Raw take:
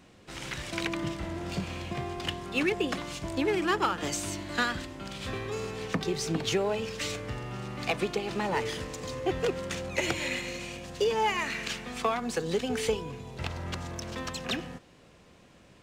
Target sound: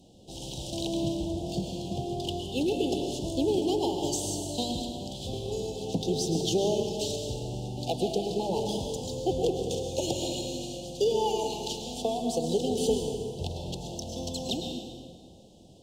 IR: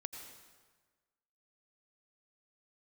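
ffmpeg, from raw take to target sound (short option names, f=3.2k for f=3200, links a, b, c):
-filter_complex "[0:a]asuperstop=centerf=1600:order=12:qfactor=0.73[a];[1:a]atrim=start_sample=2205,asetrate=35280,aresample=44100[b];[a][b]afir=irnorm=-1:irlink=0,volume=4dB"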